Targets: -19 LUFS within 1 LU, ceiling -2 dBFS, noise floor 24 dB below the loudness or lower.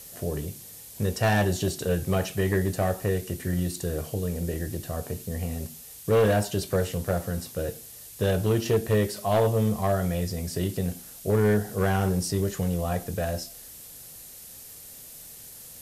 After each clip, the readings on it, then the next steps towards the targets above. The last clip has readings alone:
clipped 0.7%; flat tops at -16.0 dBFS; noise floor -45 dBFS; noise floor target -51 dBFS; loudness -27.0 LUFS; peak -16.0 dBFS; loudness target -19.0 LUFS
-> clip repair -16 dBFS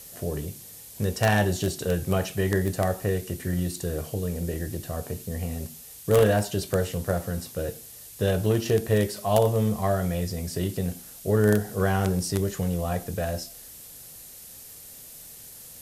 clipped 0.0%; noise floor -45 dBFS; noise floor target -51 dBFS
-> denoiser 6 dB, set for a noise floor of -45 dBFS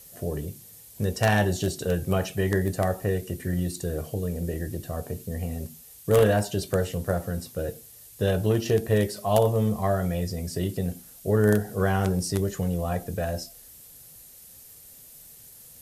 noise floor -49 dBFS; noise floor target -51 dBFS
-> denoiser 6 dB, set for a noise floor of -49 dBFS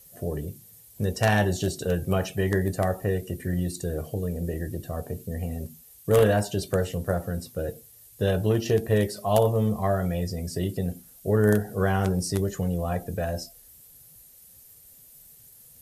noise floor -52 dBFS; loudness -26.5 LUFS; peak -7.0 dBFS; loudness target -19.0 LUFS
-> gain +7.5 dB; limiter -2 dBFS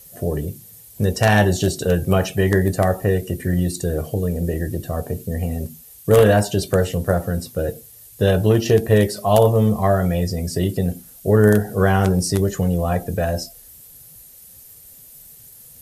loudness -19.5 LUFS; peak -2.0 dBFS; noise floor -45 dBFS

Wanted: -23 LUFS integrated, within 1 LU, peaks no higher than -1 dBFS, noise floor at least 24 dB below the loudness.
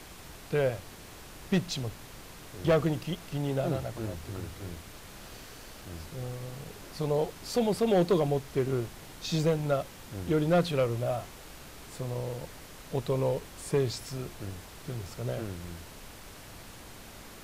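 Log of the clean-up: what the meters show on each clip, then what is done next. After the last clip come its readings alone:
clipped 0.3%; flat tops at -18.5 dBFS; noise floor -48 dBFS; noise floor target -56 dBFS; loudness -31.5 LUFS; peak -18.5 dBFS; loudness target -23.0 LUFS
-> clip repair -18.5 dBFS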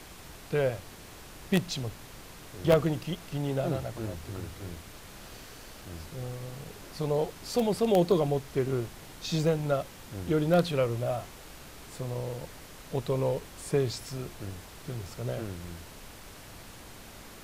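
clipped 0.0%; noise floor -48 dBFS; noise floor target -55 dBFS
-> noise print and reduce 7 dB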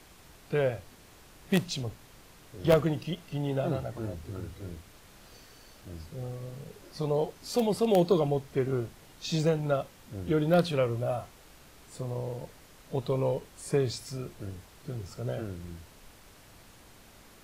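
noise floor -55 dBFS; loudness -30.5 LUFS; peak -9.5 dBFS; loudness target -23.0 LUFS
-> gain +7.5 dB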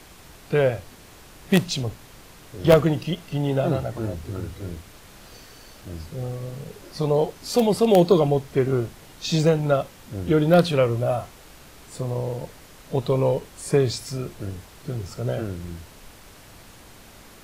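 loudness -23.0 LUFS; peak -2.0 dBFS; noise floor -48 dBFS

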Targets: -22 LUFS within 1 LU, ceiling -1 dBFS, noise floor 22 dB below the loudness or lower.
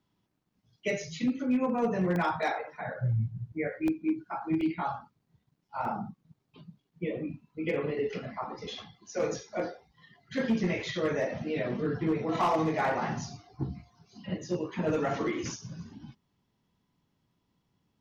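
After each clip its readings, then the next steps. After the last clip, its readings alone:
clipped 0.3%; flat tops at -21.0 dBFS; dropouts 4; longest dropout 1.2 ms; loudness -32.0 LUFS; peak -21.0 dBFS; loudness target -22.0 LUFS
-> clip repair -21 dBFS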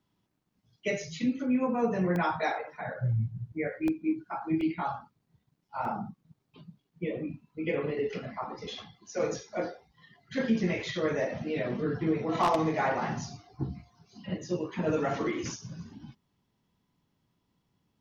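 clipped 0.0%; dropouts 4; longest dropout 1.2 ms
-> interpolate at 2.16/3.88/4.61/5.85, 1.2 ms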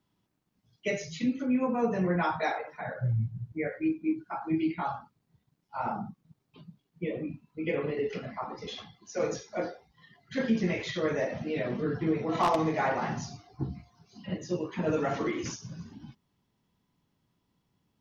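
dropouts 0; loudness -31.5 LUFS; peak -12.0 dBFS; loudness target -22.0 LUFS
-> gain +9.5 dB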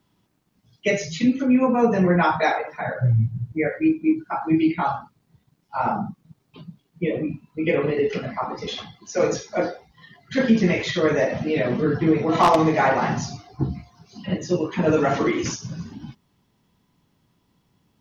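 loudness -22.5 LUFS; peak -2.5 dBFS; noise floor -68 dBFS

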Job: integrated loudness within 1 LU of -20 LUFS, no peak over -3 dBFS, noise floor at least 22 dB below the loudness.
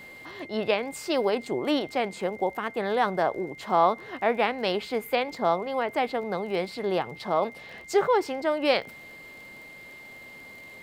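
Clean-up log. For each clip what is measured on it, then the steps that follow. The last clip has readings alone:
ticks 31/s; steady tone 2100 Hz; tone level -44 dBFS; loudness -27.0 LUFS; peak -9.0 dBFS; loudness target -20.0 LUFS
-> de-click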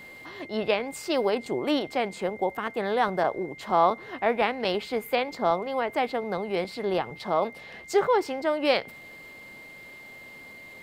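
ticks 0/s; steady tone 2100 Hz; tone level -44 dBFS
-> notch 2100 Hz, Q 30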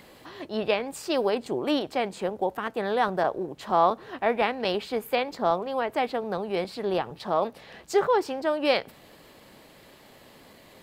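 steady tone none; loudness -27.5 LUFS; peak -9.0 dBFS; loudness target -20.0 LUFS
-> gain +7.5 dB; limiter -3 dBFS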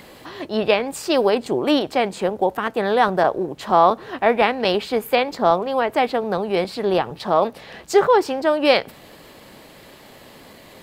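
loudness -20.0 LUFS; peak -3.0 dBFS; noise floor -45 dBFS

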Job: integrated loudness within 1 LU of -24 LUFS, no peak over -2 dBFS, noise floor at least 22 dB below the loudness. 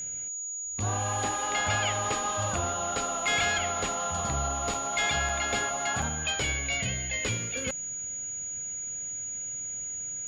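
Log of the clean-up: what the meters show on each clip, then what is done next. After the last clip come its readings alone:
dropouts 3; longest dropout 3.8 ms; steady tone 6800 Hz; tone level -33 dBFS; loudness -29.0 LUFS; peak -16.0 dBFS; loudness target -24.0 LUFS
-> interpolate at 4.74/5.29/6.02, 3.8 ms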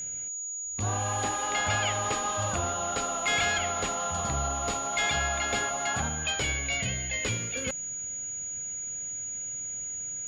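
dropouts 0; steady tone 6800 Hz; tone level -33 dBFS
-> notch 6800 Hz, Q 30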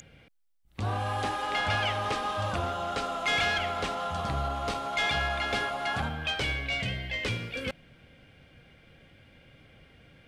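steady tone none; loudness -30.0 LUFS; peak -17.0 dBFS; loudness target -24.0 LUFS
-> gain +6 dB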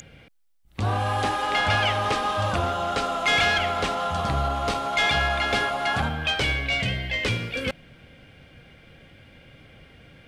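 loudness -24.0 LUFS; peak -11.0 dBFS; noise floor -53 dBFS

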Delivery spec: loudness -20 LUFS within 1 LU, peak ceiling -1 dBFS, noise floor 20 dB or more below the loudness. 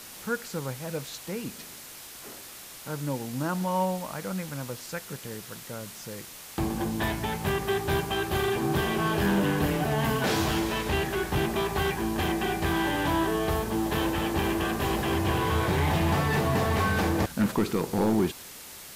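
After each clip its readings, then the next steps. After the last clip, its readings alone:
clipped 0.3%; flat tops at -18.0 dBFS; noise floor -44 dBFS; noise floor target -48 dBFS; loudness -28.0 LUFS; peak -18.0 dBFS; loudness target -20.0 LUFS
-> clip repair -18 dBFS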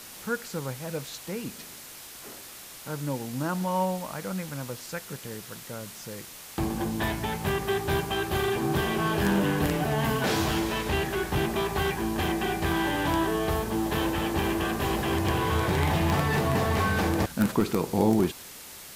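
clipped 0.0%; noise floor -44 dBFS; noise floor target -48 dBFS
-> denoiser 6 dB, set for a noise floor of -44 dBFS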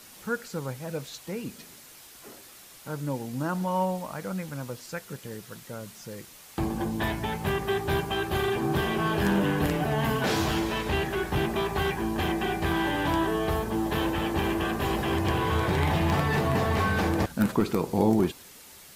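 noise floor -50 dBFS; loudness -27.5 LUFS; peak -9.5 dBFS; loudness target -20.0 LUFS
-> gain +7.5 dB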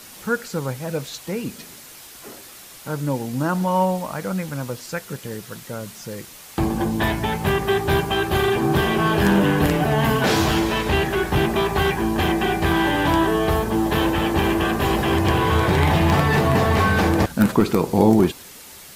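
loudness -20.0 LUFS; peak -2.0 dBFS; noise floor -42 dBFS

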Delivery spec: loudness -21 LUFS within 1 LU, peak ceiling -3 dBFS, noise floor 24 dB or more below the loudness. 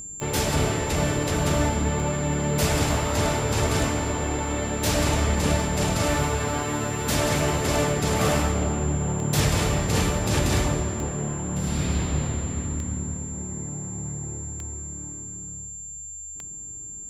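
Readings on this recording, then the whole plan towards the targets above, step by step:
clicks 10; steady tone 7300 Hz; tone level -35 dBFS; loudness -25.0 LUFS; peak -10.5 dBFS; loudness target -21.0 LUFS
-> de-click; notch 7300 Hz, Q 30; gain +4 dB

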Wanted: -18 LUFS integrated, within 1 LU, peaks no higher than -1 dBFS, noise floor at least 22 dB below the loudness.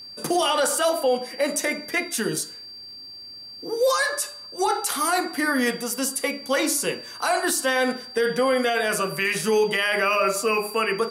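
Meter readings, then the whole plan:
ticks 17/s; steady tone 4700 Hz; tone level -38 dBFS; loudness -23.0 LUFS; peak -10.5 dBFS; loudness target -18.0 LUFS
-> de-click; notch 4700 Hz, Q 30; gain +5 dB

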